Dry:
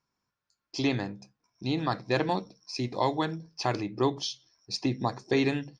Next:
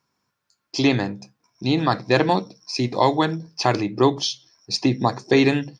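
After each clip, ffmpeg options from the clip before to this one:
-af "highpass=85,volume=9dB"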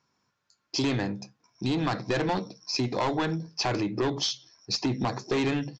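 -af "aresample=16000,asoftclip=type=tanh:threshold=-18dB,aresample=44100,acompressor=threshold=-24dB:ratio=6"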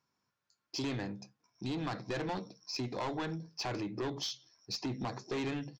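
-af "asoftclip=type=tanh:threshold=-19dB,volume=-8.5dB"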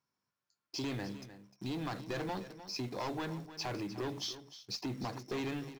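-filter_complex "[0:a]asplit=2[a][b];[b]acrusher=bits=7:mix=0:aa=0.000001,volume=-5dB[c];[a][c]amix=inputs=2:normalize=0,aecho=1:1:304:0.211,volume=-5.5dB"

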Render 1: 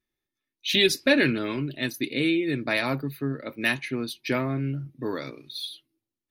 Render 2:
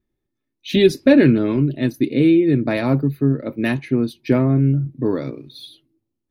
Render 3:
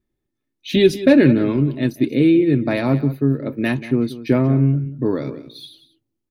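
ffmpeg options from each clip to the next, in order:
-af "tiltshelf=f=860:g=9.5,volume=4dB"
-af "aecho=1:1:185:0.178"

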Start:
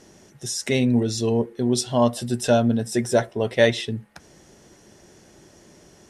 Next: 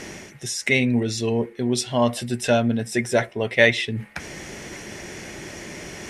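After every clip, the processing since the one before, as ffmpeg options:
-af "equalizer=f=2.2k:w=1.9:g=12.5,areverse,acompressor=mode=upward:threshold=-21dB:ratio=2.5,areverse,volume=-1.5dB"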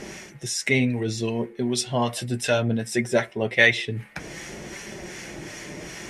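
-filter_complex "[0:a]acrossover=split=960[a][b];[a]aeval=exprs='val(0)*(1-0.5/2+0.5/2*cos(2*PI*2.6*n/s))':c=same[c];[b]aeval=exprs='val(0)*(1-0.5/2-0.5/2*cos(2*PI*2.6*n/s))':c=same[d];[c][d]amix=inputs=2:normalize=0,flanger=delay=5:depth=1.8:regen=-46:speed=0.62:shape=triangular,volume=5dB"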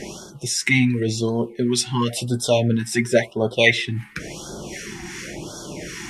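-af "afftfilt=real='re*(1-between(b*sr/1024,490*pow(2300/490,0.5+0.5*sin(2*PI*0.94*pts/sr))/1.41,490*pow(2300/490,0.5+0.5*sin(2*PI*0.94*pts/sr))*1.41))':imag='im*(1-between(b*sr/1024,490*pow(2300/490,0.5+0.5*sin(2*PI*0.94*pts/sr))/1.41,490*pow(2300/490,0.5+0.5*sin(2*PI*0.94*pts/sr))*1.41))':win_size=1024:overlap=0.75,volume=4.5dB"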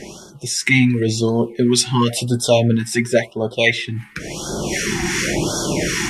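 -af "dynaudnorm=f=380:g=3:m=14.5dB,volume=-1dB"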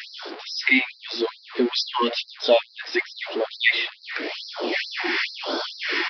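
-af "aeval=exprs='val(0)+0.5*0.075*sgn(val(0))':c=same,aresample=11025,aresample=44100,afftfilt=real='re*gte(b*sr/1024,220*pow(4000/220,0.5+0.5*sin(2*PI*2.3*pts/sr)))':imag='im*gte(b*sr/1024,220*pow(4000/220,0.5+0.5*sin(2*PI*2.3*pts/sr)))':win_size=1024:overlap=0.75,volume=-3dB"

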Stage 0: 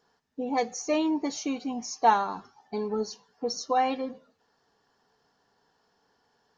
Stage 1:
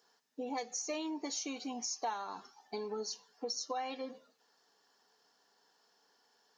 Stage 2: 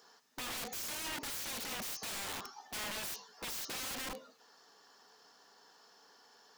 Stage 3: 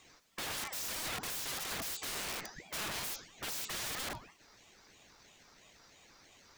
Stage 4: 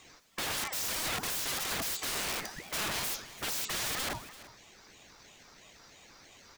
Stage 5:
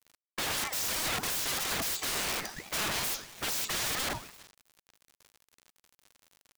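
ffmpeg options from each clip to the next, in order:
-af "highpass=270,highshelf=f=3.1k:g=11,acompressor=threshold=-32dB:ratio=4,volume=-4.5dB"
-af "equalizer=f=1.2k:t=o:w=0.3:g=4.5,alimiter=level_in=10.5dB:limit=-24dB:level=0:latency=1:release=22,volume=-10.5dB,aeval=exprs='(mod(168*val(0)+1,2)-1)/168':c=same,volume=8.5dB"
-af "aeval=exprs='val(0)*sin(2*PI*1000*n/s+1000*0.6/3*sin(2*PI*3*n/s))':c=same,volume=4.5dB"
-af "aecho=1:1:340:0.141,volume=5dB"
-af "aeval=exprs='val(0)*gte(abs(val(0)),0.00531)':c=same,volume=2dB"

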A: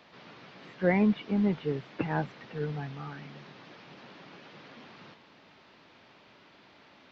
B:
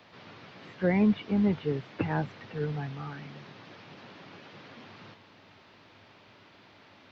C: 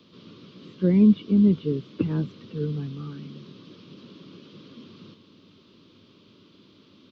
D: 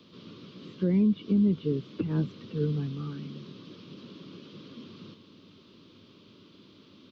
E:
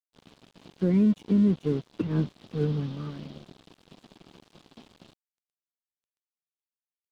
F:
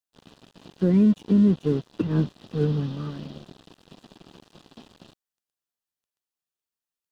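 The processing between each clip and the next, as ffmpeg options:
-filter_complex "[0:a]equalizer=f=100:w=4.8:g=12.5,acrossover=split=380|3000[a][b][c];[b]acompressor=threshold=-29dB:ratio=6[d];[a][d][c]amix=inputs=3:normalize=0,volume=1dB"
-af "firequalizer=gain_entry='entry(110,0);entry(180,8);entry(360,6);entry(530,-2);entry(770,-20);entry(1100,-3);entry(1800,-15);entry(3200,3);entry(8300,-3)':delay=0.05:min_phase=1"
-af "alimiter=limit=-17.5dB:level=0:latency=1:release=217"
-af "aeval=exprs='sgn(val(0))*max(abs(val(0))-0.00596,0)':c=same,volume=2.5dB"
-af "bandreject=f=2.2k:w=8,volume=3.5dB"

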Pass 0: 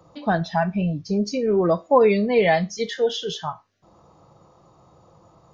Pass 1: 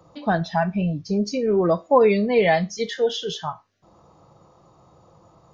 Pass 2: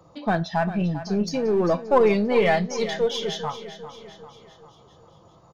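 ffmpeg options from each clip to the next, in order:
-af anull
-filter_complex "[0:a]asplit=2[a][b];[b]aeval=exprs='clip(val(0),-1,0.0398)':c=same,volume=-3dB[c];[a][c]amix=inputs=2:normalize=0,aecho=1:1:397|794|1191|1588|1985:0.224|0.116|0.0605|0.0315|0.0164,volume=-5dB"

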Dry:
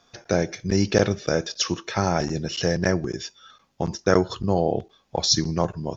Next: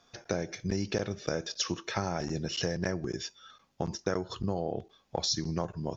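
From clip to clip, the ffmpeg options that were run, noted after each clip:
-af "acompressor=threshold=-23dB:ratio=6,volume=-4dB"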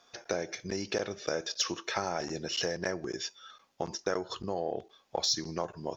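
-filter_complex "[0:a]bass=f=250:g=-13,treble=f=4k:g=0,asplit=2[a][b];[b]asoftclip=type=tanh:threshold=-28dB,volume=-11dB[c];[a][c]amix=inputs=2:normalize=0"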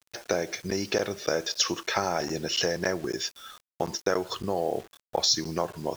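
-af "acrusher=bits=8:mix=0:aa=0.000001,volume=5.5dB"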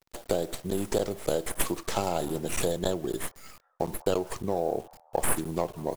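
-filter_complex "[0:a]acrossover=split=740|1100[a][b][c];[b]asplit=5[d][e][f][g][h];[e]adelay=196,afreqshift=45,volume=-14.5dB[i];[f]adelay=392,afreqshift=90,volume=-21.6dB[j];[g]adelay=588,afreqshift=135,volume=-28.8dB[k];[h]adelay=784,afreqshift=180,volume=-35.9dB[l];[d][i][j][k][l]amix=inputs=5:normalize=0[m];[c]aeval=exprs='abs(val(0))':c=same[n];[a][m][n]amix=inputs=3:normalize=0"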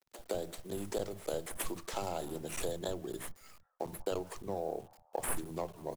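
-filter_complex "[0:a]acrossover=split=210[a][b];[a]adelay=50[c];[c][b]amix=inputs=2:normalize=0,volume=-8.5dB"

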